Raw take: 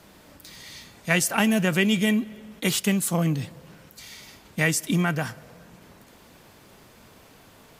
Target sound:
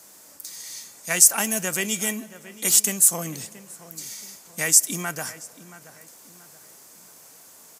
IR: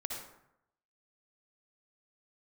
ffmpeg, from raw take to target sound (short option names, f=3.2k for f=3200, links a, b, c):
-filter_complex "[0:a]highpass=f=530:p=1,highshelf=f=4.8k:t=q:w=1.5:g=12,asplit=2[a][b];[b]adelay=677,lowpass=f=2.4k:p=1,volume=-15.5dB,asplit=2[c][d];[d]adelay=677,lowpass=f=2.4k:p=1,volume=0.4,asplit=2[e][f];[f]adelay=677,lowpass=f=2.4k:p=1,volume=0.4,asplit=2[g][h];[h]adelay=677,lowpass=f=2.4k:p=1,volume=0.4[i];[c][e][g][i]amix=inputs=4:normalize=0[j];[a][j]amix=inputs=2:normalize=0,volume=-1.5dB"